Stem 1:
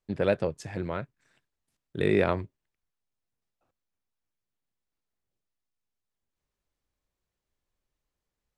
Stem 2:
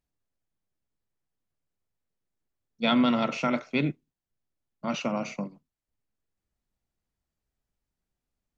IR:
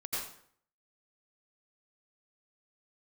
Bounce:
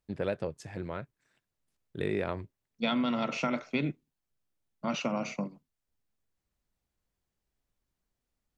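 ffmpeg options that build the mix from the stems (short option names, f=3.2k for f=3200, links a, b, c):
-filter_complex "[0:a]volume=-5dB[a];[1:a]volume=-0.5dB[b];[a][b]amix=inputs=2:normalize=0,acompressor=threshold=-26dB:ratio=6"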